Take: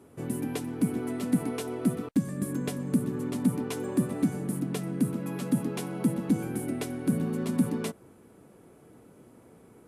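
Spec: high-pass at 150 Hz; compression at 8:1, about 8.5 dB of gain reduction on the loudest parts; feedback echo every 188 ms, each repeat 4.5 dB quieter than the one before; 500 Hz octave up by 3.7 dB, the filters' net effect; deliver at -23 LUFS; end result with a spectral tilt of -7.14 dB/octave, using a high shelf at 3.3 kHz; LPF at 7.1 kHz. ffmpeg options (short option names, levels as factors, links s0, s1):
-af "highpass=150,lowpass=7100,equalizer=f=500:t=o:g=5,highshelf=f=3300:g=-9,acompressor=threshold=0.0398:ratio=8,aecho=1:1:188|376|564|752|940|1128|1316|1504|1692:0.596|0.357|0.214|0.129|0.0772|0.0463|0.0278|0.0167|0.01,volume=2.99"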